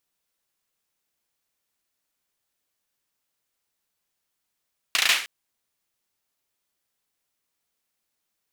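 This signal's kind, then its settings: hand clap length 0.31 s, bursts 5, apart 35 ms, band 2.4 kHz, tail 0.44 s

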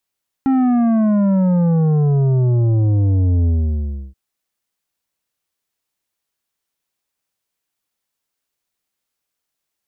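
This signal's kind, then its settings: sub drop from 270 Hz, over 3.68 s, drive 9 dB, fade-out 0.68 s, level -13 dB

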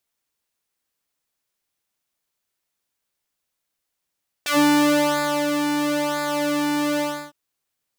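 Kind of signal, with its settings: synth patch with pulse-width modulation D4, oscillator 2 sine, interval -12 st, oscillator 2 level -6 dB, sub -28 dB, noise -19.5 dB, filter highpass, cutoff 280 Hz, Q 1.1, filter envelope 3.5 oct, filter decay 0.11 s, filter sustain 10%, attack 6.1 ms, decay 0.99 s, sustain -7 dB, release 0.31 s, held 2.55 s, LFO 1 Hz, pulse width 28%, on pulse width 18%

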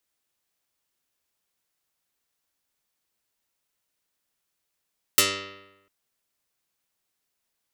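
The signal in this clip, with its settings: plucked string G2, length 0.70 s, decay 0.98 s, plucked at 0.12, dark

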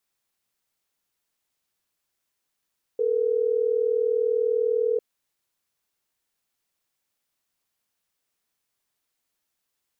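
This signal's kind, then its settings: call progress tone ringback tone, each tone -23 dBFS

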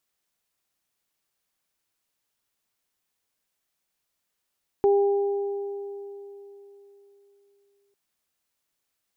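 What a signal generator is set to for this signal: additive tone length 3.10 s, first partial 401 Hz, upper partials -10.5 dB, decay 3.58 s, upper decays 2.67 s, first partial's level -15.5 dB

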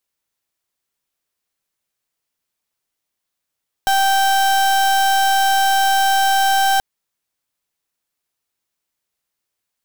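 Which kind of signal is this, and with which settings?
pulse 781 Hz, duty 35% -15 dBFS 2.93 s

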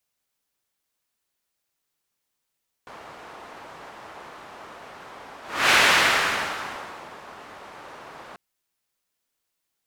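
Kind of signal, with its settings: whoosh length 5.49 s, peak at 2.86 s, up 0.33 s, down 1.55 s, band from 950 Hz, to 2 kHz, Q 1.1, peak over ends 26 dB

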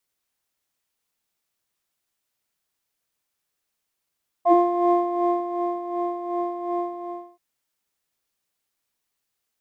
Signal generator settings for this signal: synth patch with tremolo F5, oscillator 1 triangle, oscillator 2 sine, interval +7 st, detune 23 cents, oscillator 2 level -3 dB, noise -19.5 dB, filter bandpass, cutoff 260 Hz, Q 2.9, filter envelope 1.5 oct, filter decay 0.08 s, filter sustain 10%, attack 70 ms, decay 1.17 s, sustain -9 dB, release 0.55 s, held 2.38 s, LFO 2.7 Hz, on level 7.5 dB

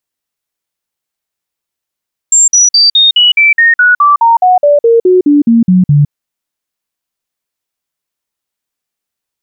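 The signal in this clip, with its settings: stepped sine 7.39 kHz down, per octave 3, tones 18, 0.16 s, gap 0.05 s -3 dBFS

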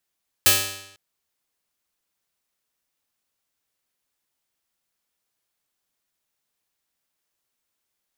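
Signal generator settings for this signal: plucked string G2, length 0.50 s, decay 0.84 s, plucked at 0.43, bright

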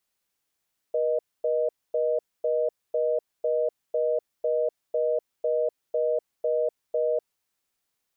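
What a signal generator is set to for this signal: call progress tone reorder tone, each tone -24.5 dBFS 6.37 s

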